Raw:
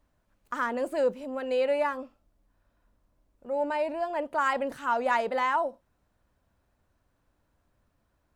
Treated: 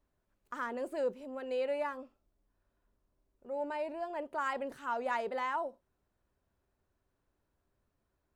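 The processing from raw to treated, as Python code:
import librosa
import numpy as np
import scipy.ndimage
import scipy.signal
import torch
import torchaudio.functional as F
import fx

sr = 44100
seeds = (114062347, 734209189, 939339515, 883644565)

y = fx.peak_eq(x, sr, hz=390.0, db=9.0, octaves=0.25)
y = F.gain(torch.from_numpy(y), -8.5).numpy()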